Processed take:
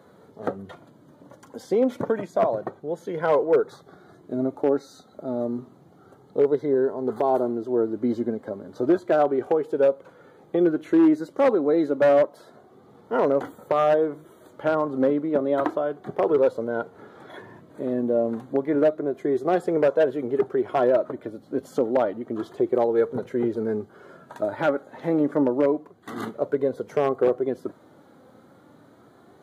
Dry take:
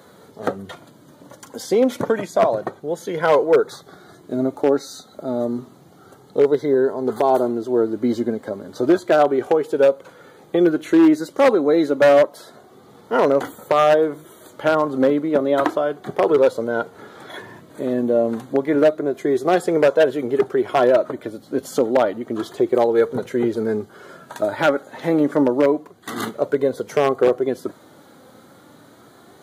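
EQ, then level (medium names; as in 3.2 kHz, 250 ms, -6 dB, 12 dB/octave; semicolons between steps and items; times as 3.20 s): treble shelf 2.2 kHz -11.5 dB; -4.0 dB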